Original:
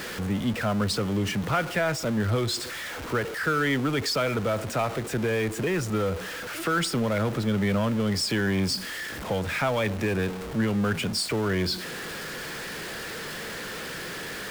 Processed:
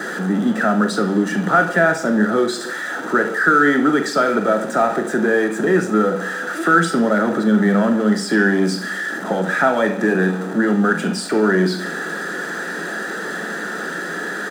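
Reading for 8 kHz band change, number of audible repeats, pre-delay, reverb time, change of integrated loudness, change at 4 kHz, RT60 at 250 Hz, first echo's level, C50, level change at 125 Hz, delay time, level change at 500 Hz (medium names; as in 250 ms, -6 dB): +2.5 dB, 1, 3 ms, 0.70 s, +9.0 dB, -0.5 dB, 0.75 s, -11.0 dB, 12.0 dB, +2.0 dB, 42 ms, +9.5 dB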